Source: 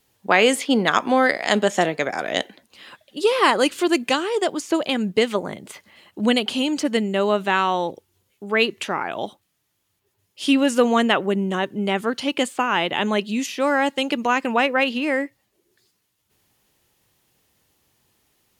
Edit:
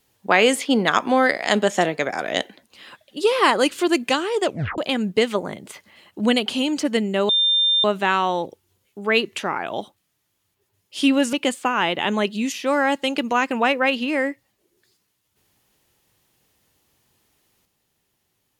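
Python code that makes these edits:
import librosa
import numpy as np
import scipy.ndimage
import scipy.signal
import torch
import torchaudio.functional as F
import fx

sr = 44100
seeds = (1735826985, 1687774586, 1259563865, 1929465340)

y = fx.edit(x, sr, fx.tape_stop(start_s=4.44, length_s=0.34),
    fx.insert_tone(at_s=7.29, length_s=0.55, hz=3600.0, db=-15.0),
    fx.cut(start_s=10.78, length_s=1.49), tone=tone)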